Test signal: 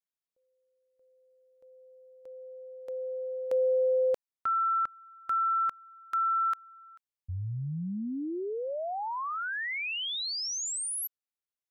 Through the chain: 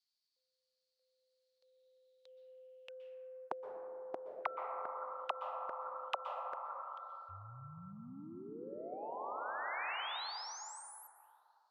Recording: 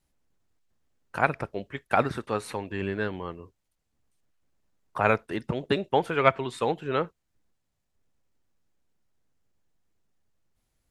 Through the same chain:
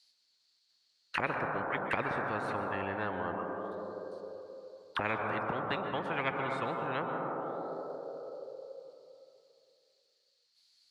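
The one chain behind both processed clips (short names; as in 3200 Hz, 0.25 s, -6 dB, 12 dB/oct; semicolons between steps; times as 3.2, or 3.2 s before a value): auto-wah 540–4500 Hz, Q 9.4, down, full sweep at -29.5 dBFS; plate-style reverb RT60 2.8 s, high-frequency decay 0.25×, pre-delay 0.11 s, DRR 7.5 dB; spectral compressor 10:1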